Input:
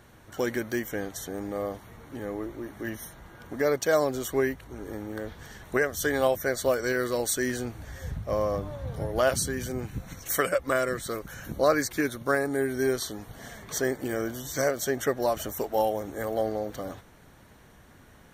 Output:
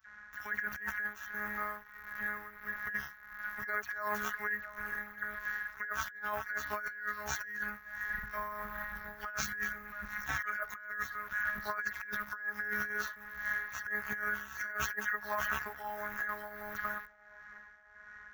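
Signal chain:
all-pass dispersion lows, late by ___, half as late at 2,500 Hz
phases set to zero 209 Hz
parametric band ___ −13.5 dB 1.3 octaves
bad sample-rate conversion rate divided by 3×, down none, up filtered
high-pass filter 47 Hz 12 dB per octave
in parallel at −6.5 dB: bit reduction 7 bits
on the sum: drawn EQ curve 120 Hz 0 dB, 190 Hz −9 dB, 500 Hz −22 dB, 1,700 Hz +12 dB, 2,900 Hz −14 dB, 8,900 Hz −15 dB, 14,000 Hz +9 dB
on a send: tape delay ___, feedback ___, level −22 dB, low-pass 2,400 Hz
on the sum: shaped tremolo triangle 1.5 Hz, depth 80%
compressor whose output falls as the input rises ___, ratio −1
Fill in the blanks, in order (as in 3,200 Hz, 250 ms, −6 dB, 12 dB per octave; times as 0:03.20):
68 ms, 140 Hz, 669 ms, 58%, −37 dBFS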